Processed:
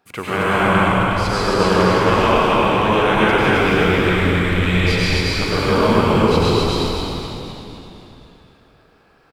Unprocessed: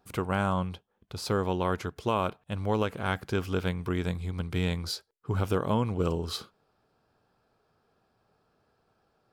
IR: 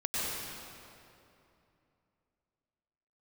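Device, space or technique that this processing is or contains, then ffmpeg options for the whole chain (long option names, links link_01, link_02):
stadium PA: -filter_complex "[0:a]highpass=frequency=190:poles=1,equalizer=frequency=2200:width_type=o:width=1.1:gain=8,aecho=1:1:224.5|268.2:0.282|0.794[link_01];[1:a]atrim=start_sample=2205[link_02];[link_01][link_02]afir=irnorm=-1:irlink=0,acrossover=split=8600[link_03][link_04];[link_04]acompressor=threshold=-52dB:ratio=4:attack=1:release=60[link_05];[link_03][link_05]amix=inputs=2:normalize=0,asplit=8[link_06][link_07][link_08][link_09][link_10][link_11][link_12][link_13];[link_07]adelay=252,afreqshift=-75,volume=-7dB[link_14];[link_08]adelay=504,afreqshift=-150,volume=-12dB[link_15];[link_09]adelay=756,afreqshift=-225,volume=-17.1dB[link_16];[link_10]adelay=1008,afreqshift=-300,volume=-22.1dB[link_17];[link_11]adelay=1260,afreqshift=-375,volume=-27.1dB[link_18];[link_12]adelay=1512,afreqshift=-450,volume=-32.2dB[link_19];[link_13]adelay=1764,afreqshift=-525,volume=-37.2dB[link_20];[link_06][link_14][link_15][link_16][link_17][link_18][link_19][link_20]amix=inputs=8:normalize=0,volume=4dB"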